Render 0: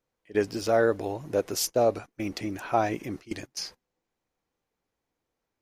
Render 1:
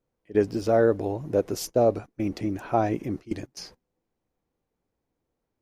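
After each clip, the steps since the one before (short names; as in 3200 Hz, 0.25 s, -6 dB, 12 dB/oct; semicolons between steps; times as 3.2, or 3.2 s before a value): tilt shelf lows +6 dB, about 800 Hz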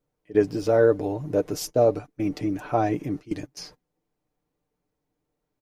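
comb 6.7 ms, depth 49%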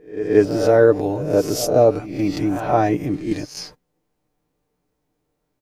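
spectral swells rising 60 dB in 0.44 s; pre-echo 0.177 s -14 dB; gain +5 dB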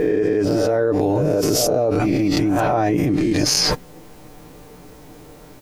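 fast leveller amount 100%; gain -9 dB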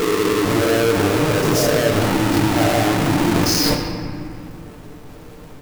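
half-waves squared off; reverb RT60 2.4 s, pre-delay 5 ms, DRR 1.5 dB; gain -5 dB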